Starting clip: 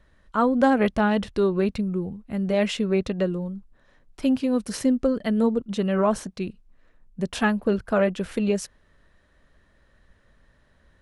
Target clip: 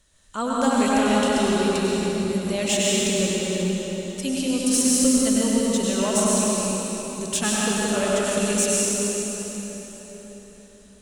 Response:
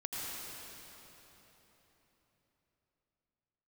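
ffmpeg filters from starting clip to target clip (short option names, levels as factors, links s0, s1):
-filter_complex "[0:a]equalizer=f=7500:w=0.91:g=14.5,aexciter=amount=1.3:drive=9.6:freq=2600[s0];[1:a]atrim=start_sample=2205,asetrate=37485,aresample=44100[s1];[s0][s1]afir=irnorm=-1:irlink=0,volume=0.668"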